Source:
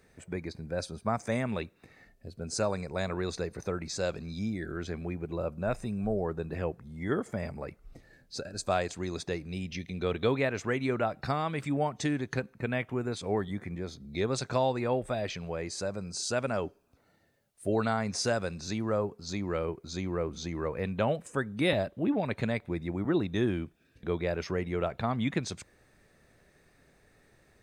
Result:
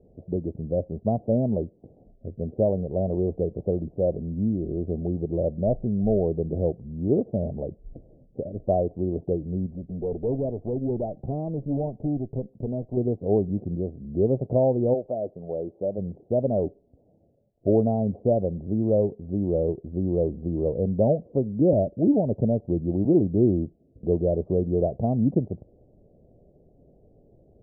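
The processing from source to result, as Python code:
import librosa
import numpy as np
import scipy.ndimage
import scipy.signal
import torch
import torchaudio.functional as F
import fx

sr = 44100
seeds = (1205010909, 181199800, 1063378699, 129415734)

y = fx.tube_stage(x, sr, drive_db=29.0, bias=0.65, at=(9.66, 12.97))
y = fx.highpass(y, sr, hz=fx.line((14.93, 690.0), (15.97, 250.0)), slope=6, at=(14.93, 15.97), fade=0.02)
y = scipy.signal.sosfilt(scipy.signal.butter(8, 680.0, 'lowpass', fs=sr, output='sos'), y)
y = y * 10.0 ** (8.5 / 20.0)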